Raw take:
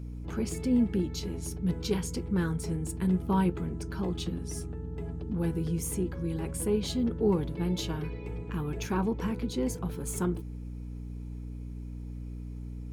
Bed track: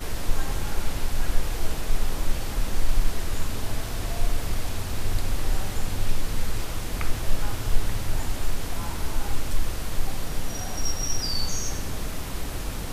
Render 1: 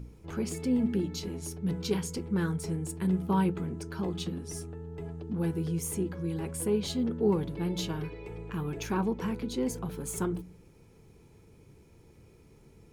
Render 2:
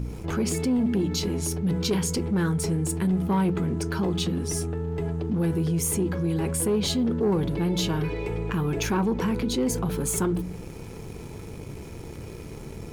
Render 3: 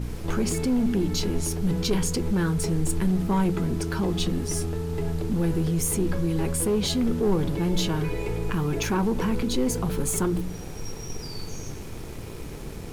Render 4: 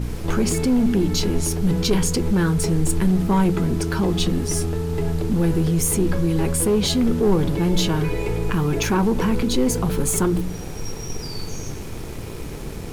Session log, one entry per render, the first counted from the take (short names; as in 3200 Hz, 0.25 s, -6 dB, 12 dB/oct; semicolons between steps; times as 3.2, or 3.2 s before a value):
de-hum 60 Hz, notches 5
sample leveller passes 1; fast leveller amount 50%
add bed track -11.5 dB
gain +5 dB